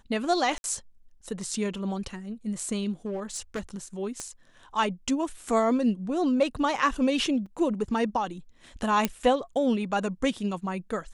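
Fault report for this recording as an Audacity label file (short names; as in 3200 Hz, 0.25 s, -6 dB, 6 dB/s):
0.580000	0.640000	gap 61 ms
3.060000	3.600000	clipped -27.5 dBFS
4.200000	4.200000	pop -21 dBFS
7.460000	7.460000	gap 4.2 ms
9.050000	9.050000	pop -9 dBFS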